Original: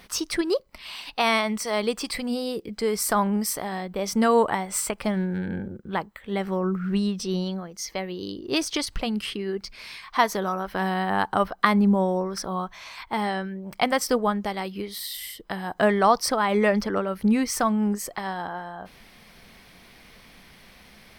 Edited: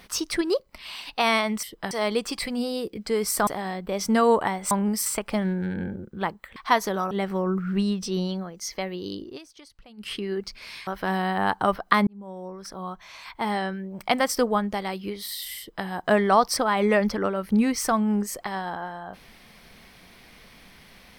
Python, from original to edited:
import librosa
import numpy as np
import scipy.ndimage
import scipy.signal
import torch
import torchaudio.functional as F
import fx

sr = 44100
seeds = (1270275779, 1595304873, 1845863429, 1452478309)

y = fx.edit(x, sr, fx.move(start_s=3.19, length_s=0.35, to_s=4.78),
    fx.fade_down_up(start_s=8.39, length_s=0.92, db=-22.0, fade_s=0.17),
    fx.move(start_s=10.04, length_s=0.55, to_s=6.28),
    fx.fade_in_span(start_s=11.79, length_s=1.49),
    fx.duplicate(start_s=15.3, length_s=0.28, to_s=1.63), tone=tone)